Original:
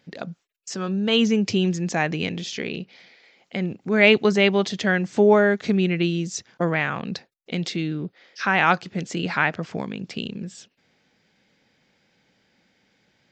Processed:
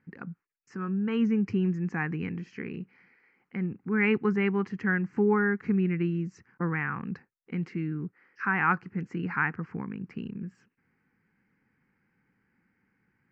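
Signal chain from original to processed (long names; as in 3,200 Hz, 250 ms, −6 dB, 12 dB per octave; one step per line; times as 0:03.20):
low-pass filter 1,900 Hz 12 dB per octave
phaser with its sweep stopped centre 1,500 Hz, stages 4
level −3 dB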